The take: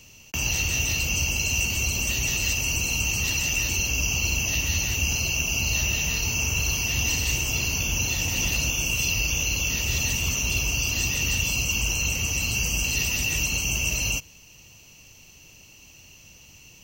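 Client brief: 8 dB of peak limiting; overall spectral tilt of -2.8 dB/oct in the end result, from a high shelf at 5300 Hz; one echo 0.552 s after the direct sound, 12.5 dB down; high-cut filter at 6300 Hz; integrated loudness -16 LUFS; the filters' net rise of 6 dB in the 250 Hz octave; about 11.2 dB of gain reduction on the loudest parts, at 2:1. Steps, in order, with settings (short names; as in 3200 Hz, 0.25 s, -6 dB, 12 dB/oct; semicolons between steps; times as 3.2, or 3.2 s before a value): LPF 6300 Hz; bell 250 Hz +8 dB; high shelf 5300 Hz -5 dB; compressor 2:1, threshold -43 dBFS; limiter -31.5 dBFS; echo 0.552 s -12.5 dB; gain +23.5 dB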